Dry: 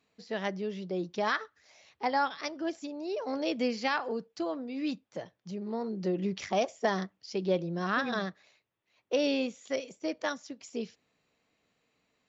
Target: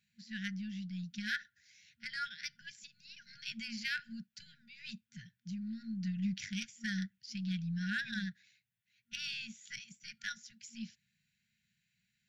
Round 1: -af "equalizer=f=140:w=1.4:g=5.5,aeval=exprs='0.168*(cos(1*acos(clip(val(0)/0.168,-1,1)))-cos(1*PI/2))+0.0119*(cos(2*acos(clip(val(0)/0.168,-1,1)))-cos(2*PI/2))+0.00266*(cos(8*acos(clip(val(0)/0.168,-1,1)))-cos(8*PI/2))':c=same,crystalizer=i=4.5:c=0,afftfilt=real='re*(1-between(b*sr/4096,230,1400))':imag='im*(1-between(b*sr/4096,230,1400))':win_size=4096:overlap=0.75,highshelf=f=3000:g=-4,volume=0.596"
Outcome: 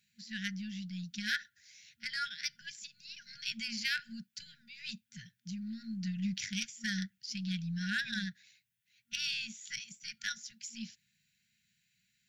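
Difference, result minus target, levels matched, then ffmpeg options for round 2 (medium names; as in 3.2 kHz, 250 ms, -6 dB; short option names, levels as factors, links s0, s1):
8 kHz band +5.0 dB
-af "equalizer=f=140:w=1.4:g=5.5,aeval=exprs='0.168*(cos(1*acos(clip(val(0)/0.168,-1,1)))-cos(1*PI/2))+0.0119*(cos(2*acos(clip(val(0)/0.168,-1,1)))-cos(2*PI/2))+0.00266*(cos(8*acos(clip(val(0)/0.168,-1,1)))-cos(8*PI/2))':c=same,crystalizer=i=4.5:c=0,afftfilt=real='re*(1-between(b*sr/4096,230,1400))':imag='im*(1-between(b*sr/4096,230,1400))':win_size=4096:overlap=0.75,highshelf=f=3000:g=-13,volume=0.596"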